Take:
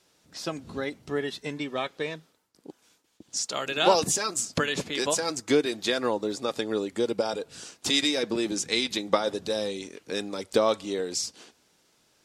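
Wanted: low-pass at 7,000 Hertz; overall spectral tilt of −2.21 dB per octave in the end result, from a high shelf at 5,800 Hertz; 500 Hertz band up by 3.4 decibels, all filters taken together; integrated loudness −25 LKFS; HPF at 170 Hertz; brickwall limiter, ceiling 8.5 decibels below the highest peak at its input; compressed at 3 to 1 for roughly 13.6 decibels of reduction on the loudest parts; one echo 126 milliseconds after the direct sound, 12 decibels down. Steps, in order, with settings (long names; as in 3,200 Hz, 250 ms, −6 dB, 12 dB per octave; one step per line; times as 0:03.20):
high-pass filter 170 Hz
low-pass filter 7,000 Hz
parametric band 500 Hz +4 dB
high-shelf EQ 5,800 Hz +6 dB
downward compressor 3 to 1, threshold −32 dBFS
brickwall limiter −23.5 dBFS
single-tap delay 126 ms −12 dB
level +10 dB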